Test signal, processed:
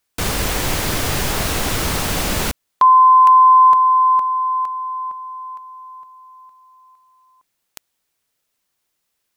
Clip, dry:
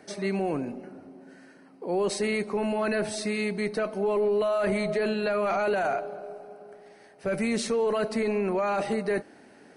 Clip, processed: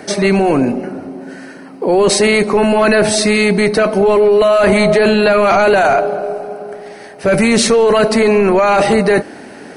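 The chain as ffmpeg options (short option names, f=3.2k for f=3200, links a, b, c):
-af "apsyclip=25.5dB,volume=-6dB"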